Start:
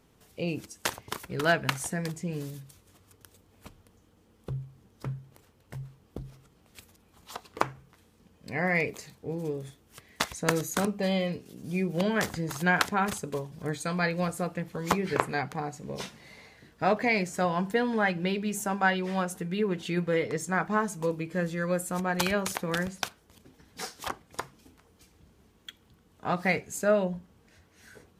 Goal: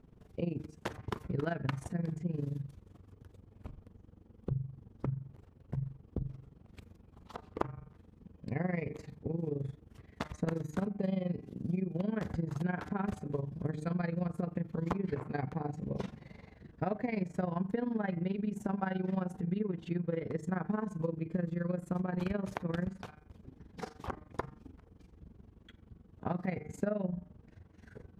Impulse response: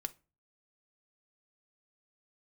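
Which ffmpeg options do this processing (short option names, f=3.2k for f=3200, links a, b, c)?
-af "lowpass=f=1.2k:p=1,lowshelf=f=320:g=11.5,bandreject=f=151.9:t=h:w=4,bandreject=f=303.8:t=h:w=4,bandreject=f=455.7:t=h:w=4,bandreject=f=607.6:t=h:w=4,bandreject=f=759.5:t=h:w=4,bandreject=f=911.4:t=h:w=4,bandreject=f=1.0633k:t=h:w=4,bandreject=f=1.2152k:t=h:w=4,bandreject=f=1.3671k:t=h:w=4,bandreject=f=1.519k:t=h:w=4,bandreject=f=1.6709k:t=h:w=4,bandreject=f=1.8228k:t=h:w=4,bandreject=f=1.9747k:t=h:w=4,bandreject=f=2.1266k:t=h:w=4,bandreject=f=2.2785k:t=h:w=4,bandreject=f=2.4304k:t=h:w=4,acompressor=threshold=-28dB:ratio=6,tremolo=f=23:d=0.824"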